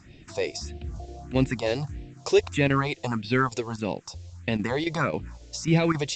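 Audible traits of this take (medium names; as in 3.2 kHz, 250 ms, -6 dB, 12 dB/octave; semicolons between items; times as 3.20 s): chopped level 3.7 Hz, depth 60%, duty 90%; a quantiser's noise floor 10-bit, dither triangular; phasing stages 4, 1.6 Hz, lowest notch 190–1200 Hz; A-law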